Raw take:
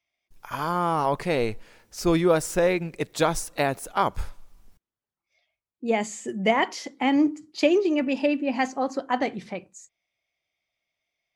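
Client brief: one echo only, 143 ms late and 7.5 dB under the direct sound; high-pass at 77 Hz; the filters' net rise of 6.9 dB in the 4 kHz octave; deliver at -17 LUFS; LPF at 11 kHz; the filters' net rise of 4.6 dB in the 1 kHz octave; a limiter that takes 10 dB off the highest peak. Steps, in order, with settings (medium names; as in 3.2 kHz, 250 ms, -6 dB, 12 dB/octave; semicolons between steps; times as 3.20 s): high-pass 77 Hz; low-pass 11 kHz; peaking EQ 1 kHz +5.5 dB; peaking EQ 4 kHz +9 dB; peak limiter -15 dBFS; delay 143 ms -7.5 dB; trim +9 dB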